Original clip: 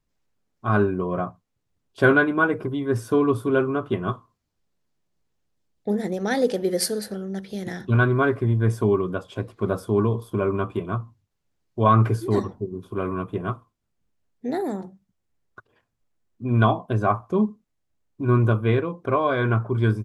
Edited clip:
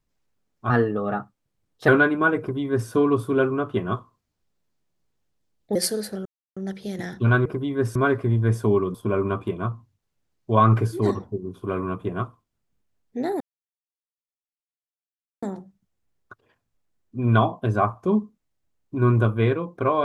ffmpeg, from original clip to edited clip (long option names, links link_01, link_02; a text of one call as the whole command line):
ffmpeg -i in.wav -filter_complex "[0:a]asplit=9[link_01][link_02][link_03][link_04][link_05][link_06][link_07][link_08][link_09];[link_01]atrim=end=0.704[link_10];[link_02]atrim=start=0.7:end=2.05,asetpts=PTS-STARTPTS,asetrate=50274,aresample=44100[link_11];[link_03]atrim=start=2.046:end=5.922[link_12];[link_04]atrim=start=6.738:end=7.24,asetpts=PTS-STARTPTS,afade=type=out:start_time=0.498:duration=0.004:curve=hsin,apad=pad_dur=0.31[link_13];[link_05]atrim=start=7.24:end=8.132,asetpts=PTS-STARTPTS,afade=type=in:duration=0.004:curve=hsin[link_14];[link_06]atrim=start=2.558:end=3.062[link_15];[link_07]atrim=start=8.128:end=9.122[link_16];[link_08]atrim=start=10.228:end=14.69,asetpts=PTS-STARTPTS,afade=type=out:start_time=4.458:duration=0.004:curve=hsin,apad=pad_dur=2.02[link_17];[link_09]atrim=start=14.69,asetpts=PTS-STARTPTS,afade=type=in:duration=0.004:curve=hsin[link_18];[link_10][link_11]acrossfade=duration=0.004:curve1=hsin:curve2=hsin[link_19];[link_19][link_12]acrossfade=duration=0.004:curve1=hsin:curve2=hsin[link_20];[link_13][link_14]concat=n=2:v=0:a=1[link_21];[link_20][link_21]acrossfade=duration=0.004:curve1=hsin:curve2=hsin[link_22];[link_22][link_15]acrossfade=duration=0.004:curve1=hsin:curve2=hsin[link_23];[link_23][link_16]acrossfade=duration=0.004:curve1=hsin:curve2=hsin[link_24];[link_17][link_18]concat=n=2:v=0:a=1[link_25];[link_24][link_25]acrossfade=duration=0.004:curve1=hsin:curve2=hsin" out.wav